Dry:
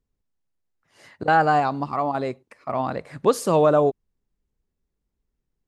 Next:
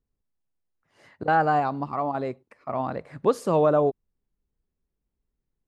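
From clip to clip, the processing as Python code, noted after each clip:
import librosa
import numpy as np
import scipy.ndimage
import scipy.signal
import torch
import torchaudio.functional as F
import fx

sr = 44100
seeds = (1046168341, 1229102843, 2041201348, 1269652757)

y = fx.high_shelf(x, sr, hz=3100.0, db=-9.5)
y = F.gain(torch.from_numpy(y), -2.5).numpy()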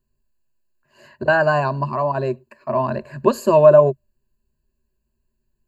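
y = fx.ripple_eq(x, sr, per_octave=1.4, db=17)
y = F.gain(torch.from_numpy(y), 4.0).numpy()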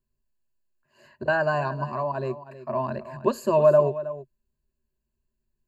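y = x + 10.0 ** (-14.5 / 20.0) * np.pad(x, (int(319 * sr / 1000.0), 0))[:len(x)]
y = F.gain(torch.from_numpy(y), -7.0).numpy()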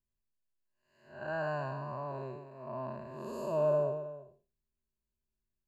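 y = fx.spec_blur(x, sr, span_ms=227.0)
y = F.gain(torch.from_numpy(y), -8.5).numpy()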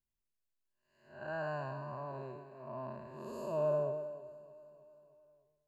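y = fx.echo_feedback(x, sr, ms=309, feedback_pct=59, wet_db=-18.5)
y = F.gain(torch.from_numpy(y), -3.5).numpy()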